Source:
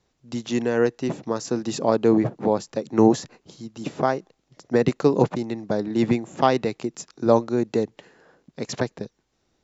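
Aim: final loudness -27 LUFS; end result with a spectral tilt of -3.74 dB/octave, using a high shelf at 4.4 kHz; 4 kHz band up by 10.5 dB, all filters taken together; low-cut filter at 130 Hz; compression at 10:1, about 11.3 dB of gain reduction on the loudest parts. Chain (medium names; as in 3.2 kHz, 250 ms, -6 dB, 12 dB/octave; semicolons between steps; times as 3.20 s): high-pass 130 Hz; peaking EQ 4 kHz +9 dB; treble shelf 4.4 kHz +7 dB; compression 10:1, threshold -22 dBFS; trim +2 dB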